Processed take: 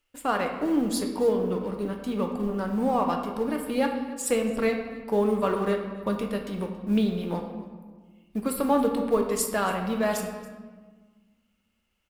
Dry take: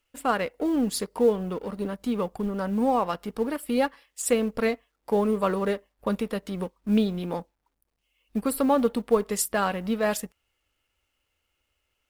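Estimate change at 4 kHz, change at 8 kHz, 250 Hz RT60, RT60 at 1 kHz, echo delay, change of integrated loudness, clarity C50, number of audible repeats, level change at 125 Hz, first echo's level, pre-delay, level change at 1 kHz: -1.0 dB, -1.0 dB, 2.1 s, 1.4 s, 278 ms, -0.5 dB, 5.5 dB, 1, 0.0 dB, -19.0 dB, 3 ms, 0.0 dB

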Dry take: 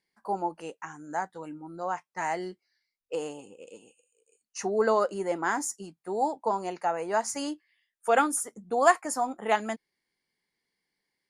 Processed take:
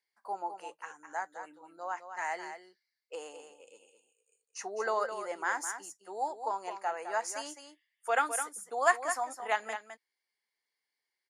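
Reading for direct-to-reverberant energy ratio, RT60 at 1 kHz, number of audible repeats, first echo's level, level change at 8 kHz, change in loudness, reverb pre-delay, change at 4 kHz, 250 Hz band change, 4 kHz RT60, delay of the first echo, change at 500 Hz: no reverb, no reverb, 1, -9.0 dB, -4.5 dB, -5.5 dB, no reverb, -4.0 dB, -16.5 dB, no reverb, 210 ms, -8.0 dB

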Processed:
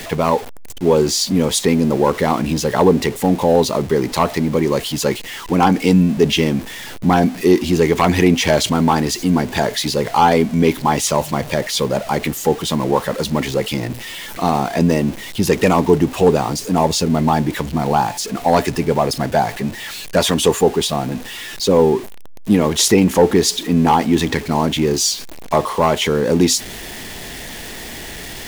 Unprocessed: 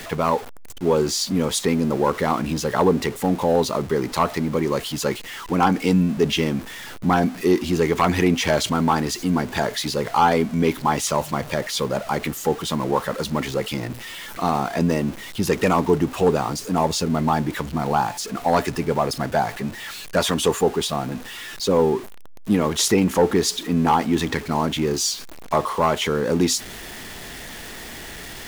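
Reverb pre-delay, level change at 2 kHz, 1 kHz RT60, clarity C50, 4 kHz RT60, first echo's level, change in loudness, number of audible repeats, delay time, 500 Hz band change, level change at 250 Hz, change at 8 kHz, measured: no reverb, +3.5 dB, no reverb, no reverb, no reverb, no echo, +5.0 dB, no echo, no echo, +5.5 dB, +5.5 dB, +5.5 dB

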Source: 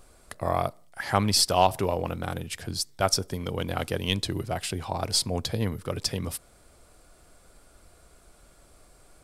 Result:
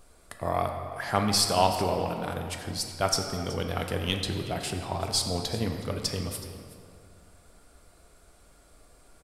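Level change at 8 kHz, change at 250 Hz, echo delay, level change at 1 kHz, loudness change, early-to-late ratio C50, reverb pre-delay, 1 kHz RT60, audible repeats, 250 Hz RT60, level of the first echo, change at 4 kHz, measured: -1.5 dB, -0.5 dB, 373 ms, -1.0 dB, -1.0 dB, 5.0 dB, 3 ms, 2.3 s, 1, 2.3 s, -17.5 dB, -1.5 dB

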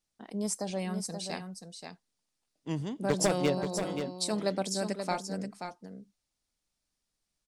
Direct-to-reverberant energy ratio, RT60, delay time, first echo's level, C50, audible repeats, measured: no reverb, no reverb, 530 ms, -7.5 dB, no reverb, 1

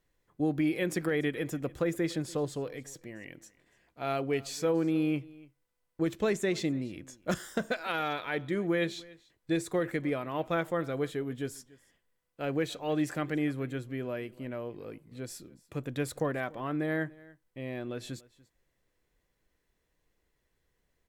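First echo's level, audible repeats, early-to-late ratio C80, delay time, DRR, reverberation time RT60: -22.5 dB, 1, no reverb, 289 ms, no reverb, no reverb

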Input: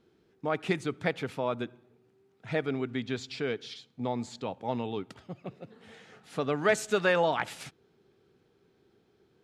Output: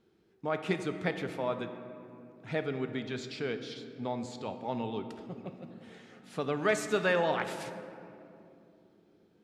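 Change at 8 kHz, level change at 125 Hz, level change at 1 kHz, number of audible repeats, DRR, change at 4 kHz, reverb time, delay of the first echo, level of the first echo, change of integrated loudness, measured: -3.0 dB, -2.0 dB, -2.5 dB, no echo, 7.5 dB, -2.5 dB, 2.9 s, no echo, no echo, -2.5 dB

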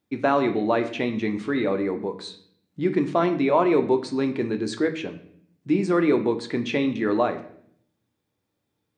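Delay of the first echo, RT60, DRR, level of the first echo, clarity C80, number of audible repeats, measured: no echo, 0.65 s, 6.0 dB, no echo, 15.0 dB, no echo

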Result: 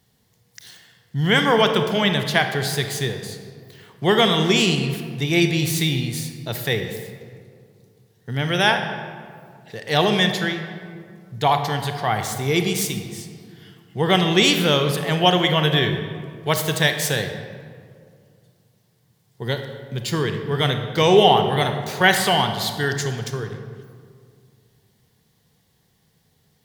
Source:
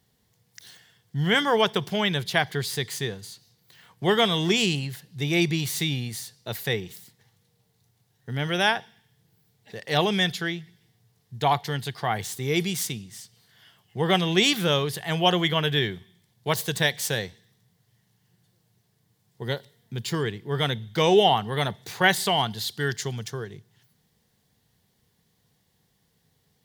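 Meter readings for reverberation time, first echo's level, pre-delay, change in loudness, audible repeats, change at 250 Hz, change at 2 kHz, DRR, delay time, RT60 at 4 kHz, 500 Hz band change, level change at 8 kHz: 2.2 s, no echo, 30 ms, +5.0 dB, no echo, +5.5 dB, +5.0 dB, 6.0 dB, no echo, 1.1 s, +5.5 dB, +4.5 dB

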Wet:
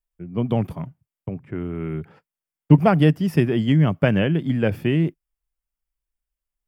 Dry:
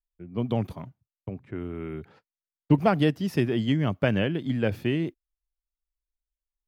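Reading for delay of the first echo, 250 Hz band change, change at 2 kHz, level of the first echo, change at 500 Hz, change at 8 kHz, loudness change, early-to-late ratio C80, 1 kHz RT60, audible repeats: no echo, +6.0 dB, +4.0 dB, no echo, +4.5 dB, no reading, +6.0 dB, no reverb, no reverb, no echo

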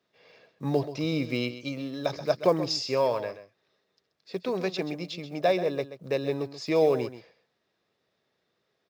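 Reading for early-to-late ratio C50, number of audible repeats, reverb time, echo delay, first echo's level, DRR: no reverb, 1, no reverb, 131 ms, -12.5 dB, no reverb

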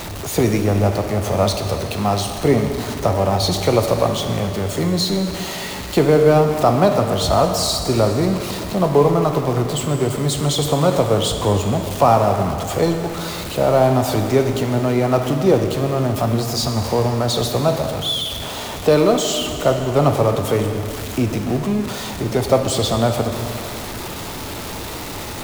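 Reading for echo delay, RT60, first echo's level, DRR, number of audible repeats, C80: no echo, 2.6 s, no echo, 4.5 dB, no echo, 6.5 dB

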